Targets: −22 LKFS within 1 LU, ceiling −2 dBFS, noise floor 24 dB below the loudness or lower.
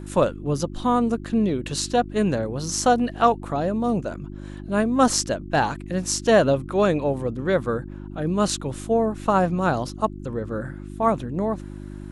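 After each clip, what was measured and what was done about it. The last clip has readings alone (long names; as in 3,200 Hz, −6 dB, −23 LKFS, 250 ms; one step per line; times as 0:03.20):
mains hum 50 Hz; hum harmonics up to 350 Hz; level of the hum −34 dBFS; integrated loudness −23.0 LKFS; sample peak −4.0 dBFS; target loudness −22.0 LKFS
→ hum removal 50 Hz, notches 7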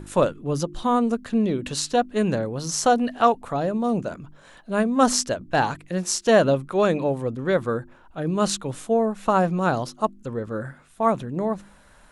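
mains hum none found; integrated loudness −23.5 LKFS; sample peak −4.0 dBFS; target loudness −22.0 LKFS
→ level +1.5 dB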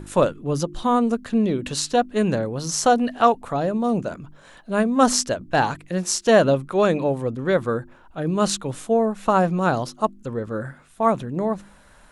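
integrated loudness −22.0 LKFS; sample peak −2.5 dBFS; background noise floor −51 dBFS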